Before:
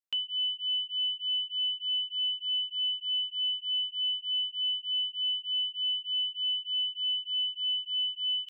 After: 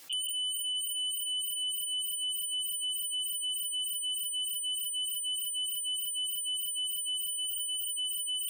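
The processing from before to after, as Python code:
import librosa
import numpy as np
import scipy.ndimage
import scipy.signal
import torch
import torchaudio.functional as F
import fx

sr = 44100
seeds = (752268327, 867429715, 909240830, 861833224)

y = fx.spec_quant(x, sr, step_db=15)
y = fx.echo_feedback(y, sr, ms=188, feedback_pct=24, wet_db=-18)
y = fx.spec_gate(y, sr, threshold_db=-25, keep='strong')
y = fx.high_shelf(y, sr, hz=2800.0, db=-3.5, at=(7.33, 7.89))
y = fx.over_compress(y, sr, threshold_db=-40.0, ratio=-1.0)
y = fx.echo_diffused(y, sr, ms=554, feedback_pct=60, wet_db=-15.0)
y = fx.fold_sine(y, sr, drive_db=13, ceiling_db=-29.5)
y = fx.band_squash(y, sr, depth_pct=70)
y = y * 10.0 ** (-2.0 / 20.0)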